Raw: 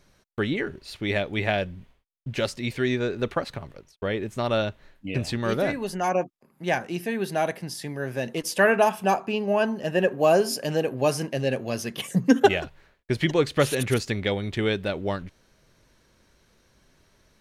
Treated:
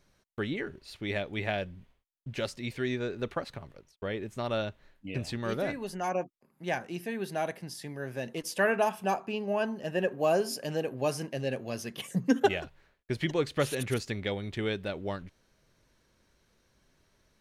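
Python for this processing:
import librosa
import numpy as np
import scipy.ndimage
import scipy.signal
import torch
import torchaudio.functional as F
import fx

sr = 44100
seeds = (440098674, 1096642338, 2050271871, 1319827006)

y = F.gain(torch.from_numpy(x), -7.0).numpy()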